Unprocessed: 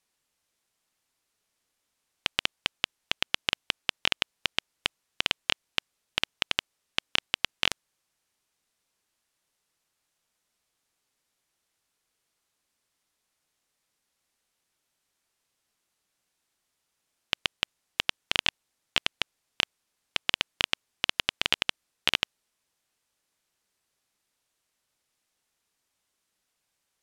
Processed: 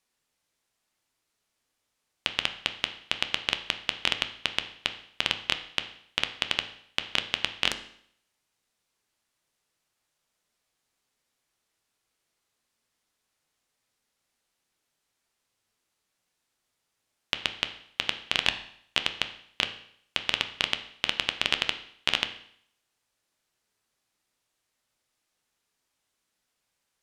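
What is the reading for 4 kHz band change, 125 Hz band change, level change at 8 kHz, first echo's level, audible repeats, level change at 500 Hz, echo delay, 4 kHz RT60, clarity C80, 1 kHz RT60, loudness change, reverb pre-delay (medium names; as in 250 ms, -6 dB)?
0.0 dB, +1.0 dB, -1.0 dB, no echo, no echo, +1.0 dB, no echo, 0.65 s, 15.0 dB, 0.65 s, 0.0 dB, 8 ms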